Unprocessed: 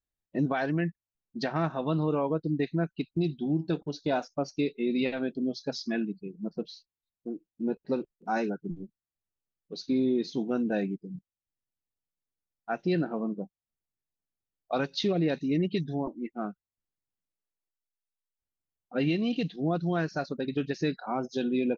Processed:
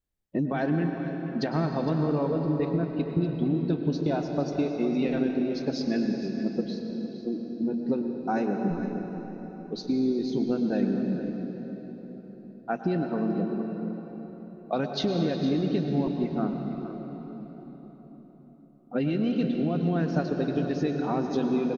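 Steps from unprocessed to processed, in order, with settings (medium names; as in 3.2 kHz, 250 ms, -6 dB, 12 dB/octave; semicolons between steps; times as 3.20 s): tilt shelf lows +4 dB, about 740 Hz; compression, threshold -28 dBFS, peak gain reduction 9 dB; delay 461 ms -13.5 dB; on a send at -4 dB: reverberation RT60 4.5 s, pre-delay 98 ms; on the sum: trim +4 dB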